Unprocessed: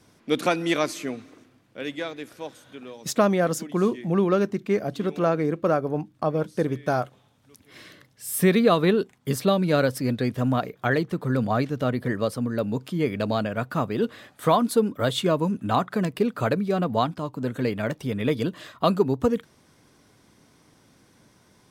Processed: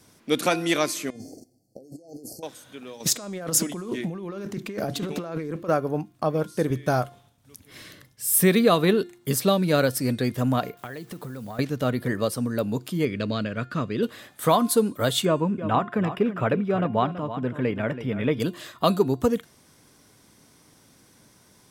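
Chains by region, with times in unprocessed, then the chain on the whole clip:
1.1–2.43 gate -53 dBFS, range -14 dB + negative-ratio compressor -43 dBFS + brick-wall FIR band-stop 820–4200 Hz
3–5.69 negative-ratio compressor -31 dBFS + Doppler distortion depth 0.19 ms
6.7–8.26 expander -60 dBFS + low shelf 100 Hz +11.5 dB
10.77–11.59 compressor 12:1, threshold -32 dBFS + requantised 10-bit, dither none
13.05–14.03 LPF 4700 Hz + bell 800 Hz -14.5 dB 0.56 oct
15.25–18.4 polynomial smoothing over 25 samples + echo 0.329 s -12 dB
whole clip: high shelf 6000 Hz +10.5 dB; de-hum 351.5 Hz, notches 28

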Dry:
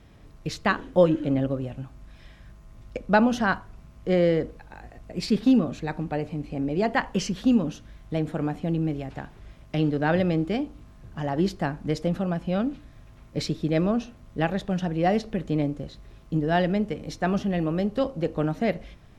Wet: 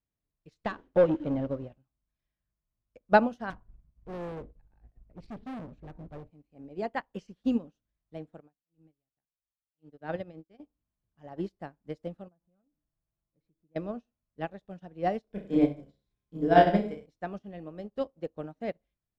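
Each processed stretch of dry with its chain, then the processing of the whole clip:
0.64–1.78 compressor 2.5:1, threshold -21 dBFS + sample leveller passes 2 + air absorption 92 m
3.5–6.31 RIAA curve playback + hard clip -22.5 dBFS + Doppler distortion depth 0.17 ms
8.4–10.6 auto swell 0.153 s + upward expander 2.5:1, over -35 dBFS
12.28–13.76 LPF 1400 Hz + comb 6 ms, depth 41% + compressor 2.5:1, threshold -38 dBFS
15.24–17.06 ripple EQ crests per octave 1.7, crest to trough 6 dB + reverse bouncing-ball echo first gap 30 ms, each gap 1.1×, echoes 5, each echo -2 dB
whole clip: dynamic EQ 570 Hz, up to +5 dB, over -36 dBFS, Q 0.7; upward expander 2.5:1, over -36 dBFS; gain -2 dB

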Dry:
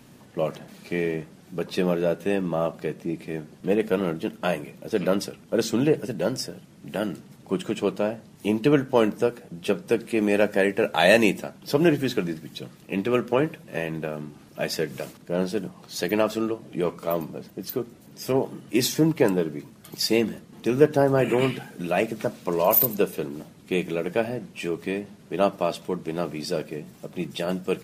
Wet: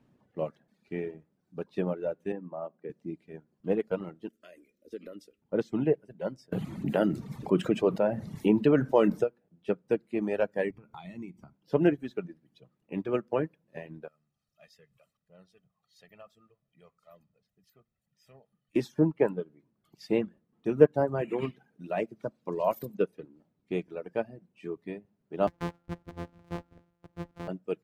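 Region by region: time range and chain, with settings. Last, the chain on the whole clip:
2.32–2.9 HPF 160 Hz 24 dB/oct + air absorption 470 m
4.29–5.42 high shelf 5800 Hz +11 dB + compressor 2.5:1, threshold -25 dBFS + fixed phaser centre 350 Hz, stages 4
6.52–9.24 high shelf 12000 Hz +9 dB + fast leveller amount 70%
10.7–11.55 low shelf 270 Hz +9.5 dB + comb 0.9 ms, depth 69% + compressor 4:1, threshold -28 dBFS
14.08–18.76 G.711 law mismatch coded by mu + passive tone stack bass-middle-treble 5-5-5 + comb 1.6 ms, depth 64%
25.47–27.48 sample sorter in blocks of 256 samples + de-hum 65.72 Hz, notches 33
whole clip: LPF 1200 Hz 6 dB/oct; reverb removal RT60 1.9 s; upward expander 1.5:1, over -40 dBFS

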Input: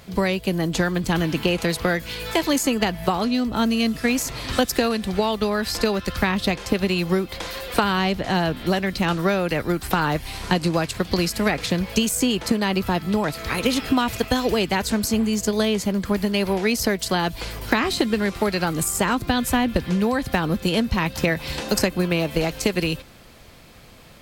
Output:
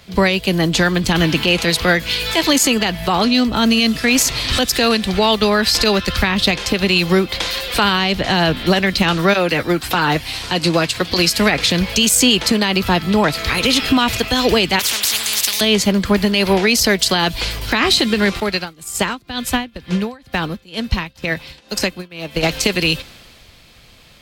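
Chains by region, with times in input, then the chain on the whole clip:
9.33–11.39 low shelf 63 Hz -11 dB + notch comb 200 Hz
14.79–15.61 HPF 190 Hz + spectral compressor 10:1
18.4–22.43 tremolo triangle 2.1 Hz, depth 90% + upward expander, over -35 dBFS
whole clip: bell 3500 Hz +8 dB 1.9 oct; maximiser +10.5 dB; three-band expander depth 40%; gain -3.5 dB

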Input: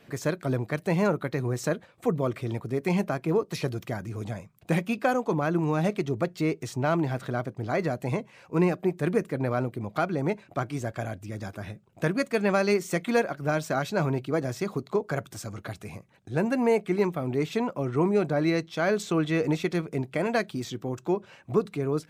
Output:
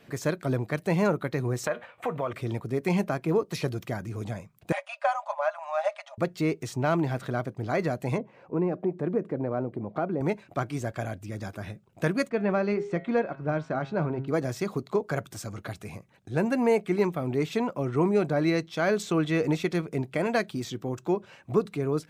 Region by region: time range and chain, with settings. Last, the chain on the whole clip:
1.66–2.33 band shelf 1300 Hz +13.5 dB 2.9 oct + compressor 4:1, threshold -21 dBFS + resonator 120 Hz, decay 0.27 s, mix 50%
4.72–6.18 brick-wall FIR band-pass 550–11000 Hz + tilt -3 dB/oct + comb 4.9 ms, depth 48%
8.18–10.21 low shelf 440 Hz +11 dB + compressor 2:1, threshold -24 dBFS + band-pass 590 Hz, Q 0.67
12.29–14.28 tape spacing loss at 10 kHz 31 dB + de-hum 135.5 Hz, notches 31
whole clip: dry

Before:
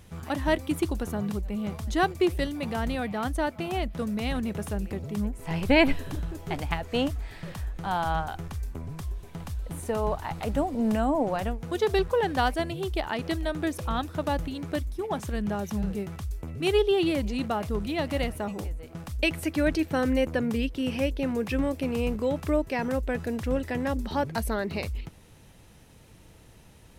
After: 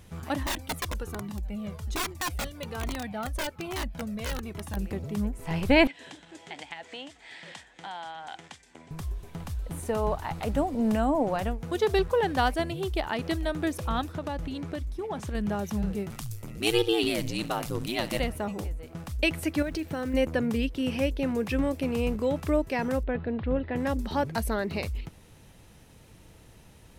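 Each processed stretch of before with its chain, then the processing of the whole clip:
0.43–4.77 wrapped overs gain 20.5 dB + cascading flanger falling 1.2 Hz
5.87–8.91 compressor 16:1, threshold -31 dBFS + speaker cabinet 390–8200 Hz, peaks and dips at 410 Hz -7 dB, 590 Hz -5 dB, 1200 Hz -9 dB, 2000 Hz +5 dB, 3300 Hz +6 dB, 7900 Hz +4 dB
14.12–15.35 high shelf 11000 Hz -11.5 dB + compressor 4:1, threshold -29 dBFS
16.1–18.2 high shelf 2700 Hz +12 dB + flutter echo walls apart 11.8 m, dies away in 0.23 s + ring modulator 57 Hz
19.62–20.14 compressor 10:1, threshold -27 dBFS + short-mantissa float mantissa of 4-bit
23.03–23.76 steep low-pass 4100 Hz 48 dB/oct + high shelf 2200 Hz -8.5 dB
whole clip: dry

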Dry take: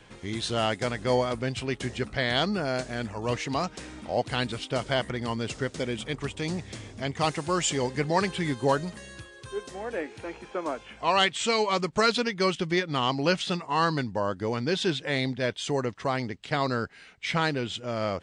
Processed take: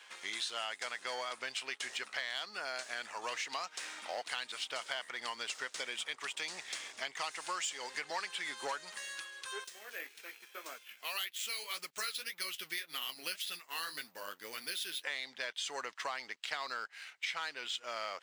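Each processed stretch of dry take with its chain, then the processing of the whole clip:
9.64–15.04 bell 880 Hz -15 dB 1.3 oct + flange 1.8 Hz, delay 3.7 ms, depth 8.6 ms, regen -44% + careless resampling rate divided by 3×, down none, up hold
whole clip: sample leveller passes 1; HPF 1200 Hz 12 dB/oct; compressor 6:1, threshold -37 dBFS; gain +1 dB

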